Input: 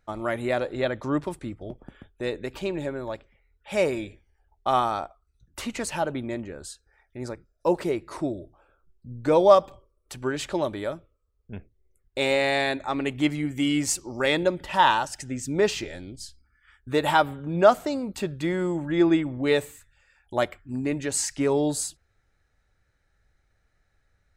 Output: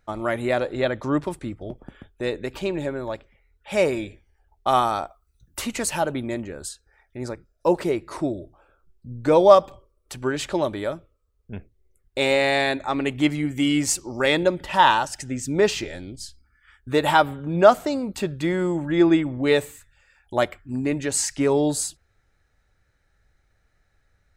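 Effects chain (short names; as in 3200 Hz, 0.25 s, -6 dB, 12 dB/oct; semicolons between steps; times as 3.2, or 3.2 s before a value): 4.67–6.69 high shelf 8300 Hz +10 dB; gain +3 dB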